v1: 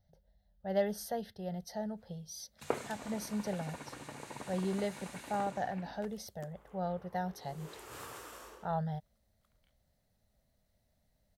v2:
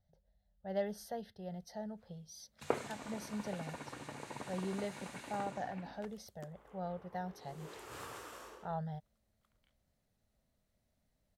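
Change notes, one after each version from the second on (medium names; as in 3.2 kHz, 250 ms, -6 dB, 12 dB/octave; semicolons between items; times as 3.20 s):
speech -5.0 dB; master: add treble shelf 9.3 kHz -7.5 dB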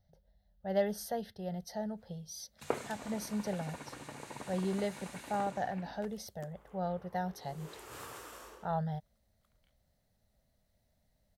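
speech +5.5 dB; master: add treble shelf 9.3 kHz +7.5 dB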